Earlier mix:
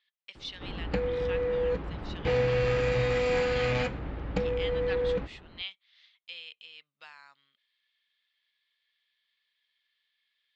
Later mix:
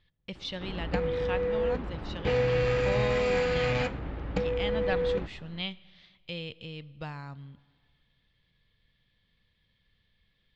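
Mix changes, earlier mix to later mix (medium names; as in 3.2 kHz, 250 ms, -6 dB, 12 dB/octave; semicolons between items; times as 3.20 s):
speech: remove high-pass 1.5 kHz 12 dB/octave; reverb: on, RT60 1.8 s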